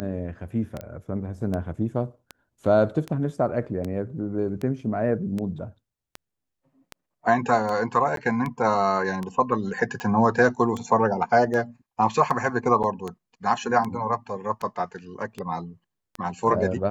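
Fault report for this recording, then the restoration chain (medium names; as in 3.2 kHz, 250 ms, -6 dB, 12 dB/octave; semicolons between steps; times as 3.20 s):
tick 78 rpm -18 dBFS
0.81 s: pop -21 dBFS
8.16–8.17 s: dropout 12 ms
12.83–12.84 s: dropout 8 ms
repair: de-click; interpolate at 8.16 s, 12 ms; interpolate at 12.83 s, 8 ms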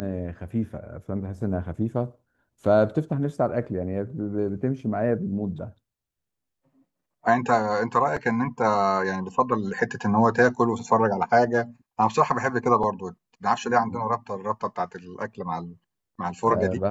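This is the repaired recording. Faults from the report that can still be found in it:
nothing left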